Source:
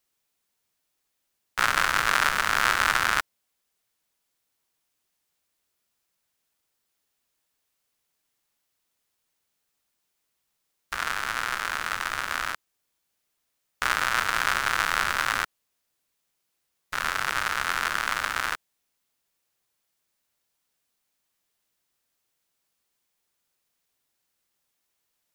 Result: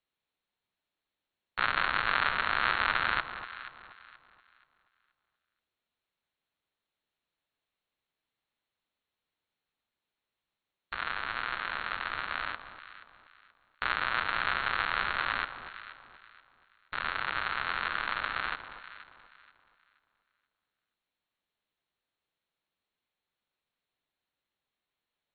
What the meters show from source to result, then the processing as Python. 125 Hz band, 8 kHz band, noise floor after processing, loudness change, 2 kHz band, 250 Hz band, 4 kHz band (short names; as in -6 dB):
-5.0 dB, under -40 dB, under -85 dBFS, -6.0 dB, -5.5 dB, -5.0 dB, -6.0 dB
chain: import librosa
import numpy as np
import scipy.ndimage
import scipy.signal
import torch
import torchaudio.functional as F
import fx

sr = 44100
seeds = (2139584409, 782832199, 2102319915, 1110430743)

y = fx.brickwall_lowpass(x, sr, high_hz=4400.0)
y = fx.echo_alternate(y, sr, ms=239, hz=1100.0, feedback_pct=54, wet_db=-8.5)
y = y * 10.0 ** (-5.5 / 20.0)